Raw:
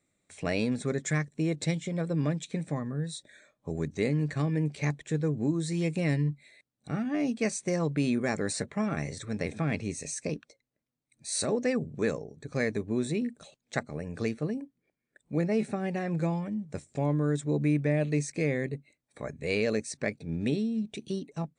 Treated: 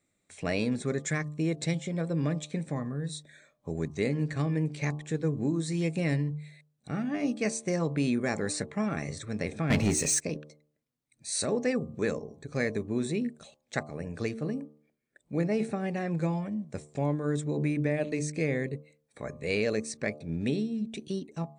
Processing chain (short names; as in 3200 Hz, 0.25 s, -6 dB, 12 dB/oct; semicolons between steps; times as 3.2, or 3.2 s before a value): de-hum 75.01 Hz, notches 16; 9.7–10.21 sample leveller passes 3